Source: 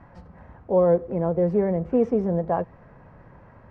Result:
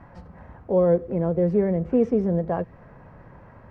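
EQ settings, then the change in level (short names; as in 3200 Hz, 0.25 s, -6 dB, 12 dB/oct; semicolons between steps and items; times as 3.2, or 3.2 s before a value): dynamic EQ 870 Hz, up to -7 dB, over -36 dBFS, Q 1.2; +2.0 dB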